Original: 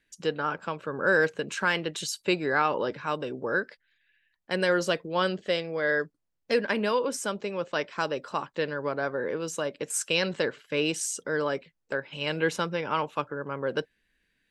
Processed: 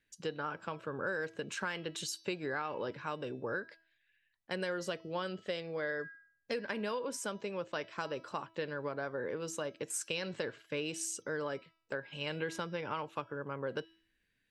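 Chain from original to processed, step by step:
parametric band 110 Hz +9 dB 0.31 octaves
hum removal 326.8 Hz, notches 19
downward compressor, threshold −27 dBFS, peak gain reduction 9 dB
level −6 dB

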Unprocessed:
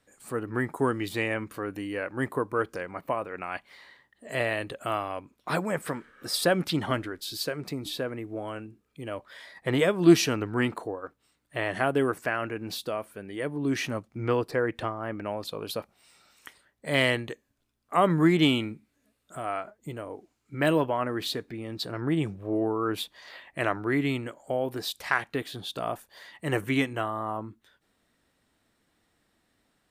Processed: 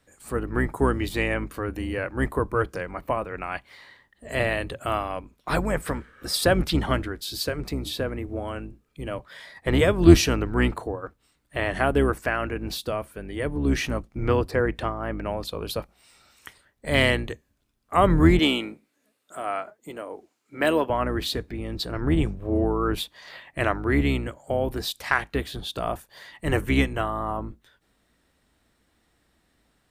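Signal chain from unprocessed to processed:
sub-octave generator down 2 octaves, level 0 dB
0:18.39–0:20.90: high-pass filter 300 Hz 12 dB per octave
level +3 dB

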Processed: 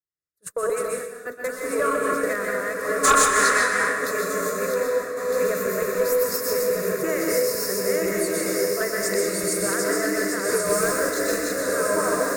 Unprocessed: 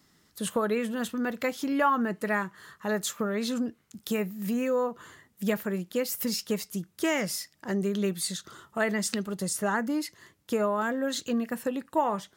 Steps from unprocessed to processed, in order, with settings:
feedback delay that plays each chunk backwards 629 ms, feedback 62%, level −1.5 dB
parametric band 1,200 Hz −2.5 dB 2.9 octaves
0:10.65–0:11.45: log-companded quantiser 4 bits
phaser with its sweep stopped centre 850 Hz, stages 6
feedback delay with all-pass diffusion 1,230 ms, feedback 57%, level −4.5 dB
0:03.04–0:03.82: gain on a spectral selection 700–11,000 Hz +11 dB
noise gate −35 dBFS, range −37 dB
harmonic generator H 4 −18 dB, 5 −13 dB, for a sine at −5 dBFS
dense smooth reverb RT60 0.97 s, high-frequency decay 0.9×, pre-delay 110 ms, DRR 0.5 dB
amplitude modulation by smooth noise, depth 55%

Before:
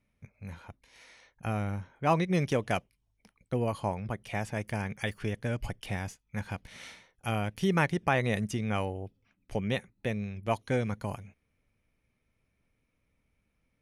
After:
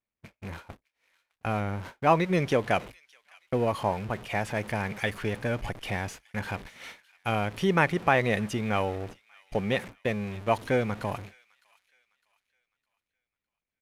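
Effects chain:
converter with a step at zero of −39 dBFS
noise gate −40 dBFS, range −50 dB
bass and treble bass −6 dB, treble −8 dB
on a send: delay with a high-pass on its return 608 ms, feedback 36%, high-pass 2,100 Hz, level −20 dB
on the sum: downsampling to 32,000 Hz
level +4.5 dB

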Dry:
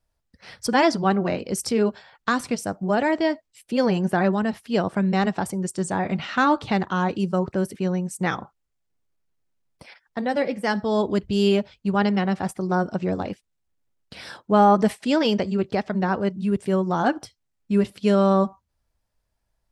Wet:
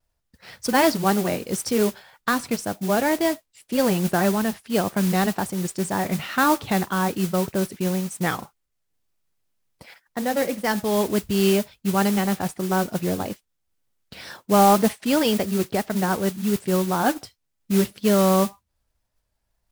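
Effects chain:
noise that follows the level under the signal 13 dB
pitch vibrato 1.9 Hz 54 cents

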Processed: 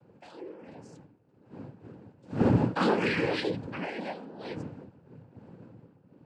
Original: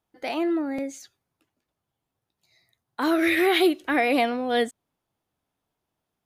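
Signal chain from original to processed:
wind on the microphone 240 Hz −27 dBFS
source passing by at 0:02.62, 30 m/s, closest 5.3 metres
cochlear-implant simulation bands 8
level +2.5 dB

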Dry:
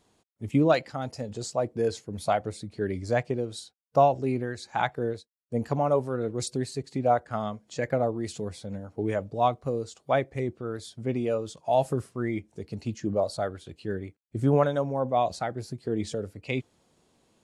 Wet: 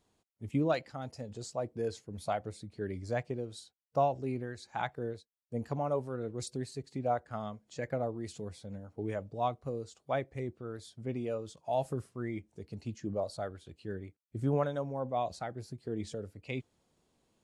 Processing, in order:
low-shelf EQ 75 Hz +6.5 dB
level −8.5 dB

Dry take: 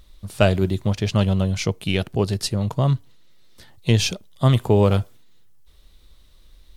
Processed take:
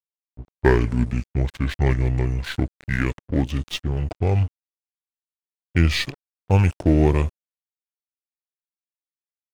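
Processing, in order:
gliding playback speed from 62% → 80%
low-pass that shuts in the quiet parts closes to 430 Hz, open at −17 dBFS
dead-zone distortion −35 dBFS

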